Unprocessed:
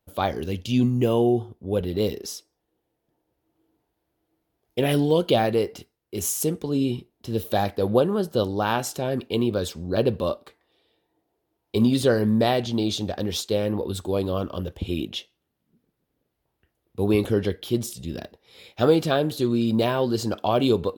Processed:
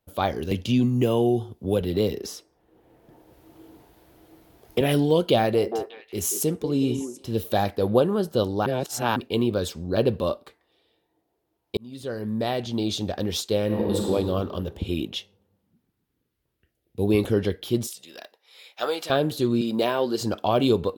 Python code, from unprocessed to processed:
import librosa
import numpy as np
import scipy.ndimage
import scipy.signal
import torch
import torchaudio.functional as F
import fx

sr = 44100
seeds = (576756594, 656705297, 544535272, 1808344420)

y = fx.band_squash(x, sr, depth_pct=70, at=(0.51, 4.81))
y = fx.echo_stepped(y, sr, ms=183, hz=370.0, octaves=1.4, feedback_pct=70, wet_db=-6, at=(5.35, 7.39))
y = fx.reverb_throw(y, sr, start_s=13.65, length_s=0.44, rt60_s=2.1, drr_db=-2.0)
y = fx.peak_eq(y, sr, hz=fx.line((15.15, 270.0), (17.13, 1300.0)), db=-13.0, octaves=0.68, at=(15.15, 17.13), fade=0.02)
y = fx.highpass(y, sr, hz=770.0, slope=12, at=(17.87, 19.1))
y = fx.highpass(y, sr, hz=260.0, slope=12, at=(19.61, 20.21))
y = fx.edit(y, sr, fx.reverse_span(start_s=8.66, length_s=0.5),
    fx.fade_in_span(start_s=11.77, length_s=1.31), tone=tone)